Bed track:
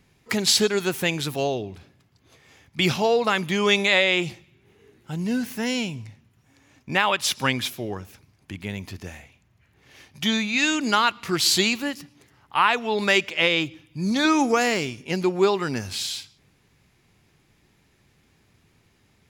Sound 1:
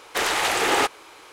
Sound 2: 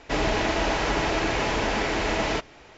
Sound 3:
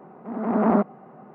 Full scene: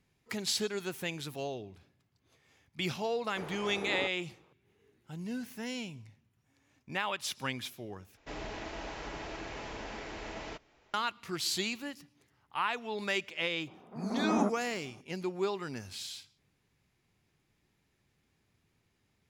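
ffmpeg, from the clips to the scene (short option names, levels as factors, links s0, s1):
-filter_complex "[0:a]volume=0.224[s0];[1:a]bandpass=f=150:t=q:w=0.68:csg=0[s1];[s0]asplit=2[s2][s3];[s2]atrim=end=8.174[s4];[2:a]atrim=end=2.77,asetpts=PTS-STARTPTS,volume=0.141[s5];[s3]atrim=start=10.936[s6];[s1]atrim=end=1.32,asetpts=PTS-STARTPTS,volume=0.422,afade=t=in:d=0.004:c=hsin,afade=t=out:st=1.316:d=0.004:c=hsin,adelay=141561S[s7];[3:a]atrim=end=1.34,asetpts=PTS-STARTPTS,volume=0.299,afade=t=in:d=0.004:c=hsin,afade=t=out:st=1.336:d=0.004:c=hsin,adelay=13670[s8];[s4][s5]acrossfade=d=0.004:c1=hsin:c2=hsin[s9];[s9][s6]acrossfade=d=0.004:c1=hsin:c2=hsin[s10];[s10][s7][s8]amix=inputs=3:normalize=0"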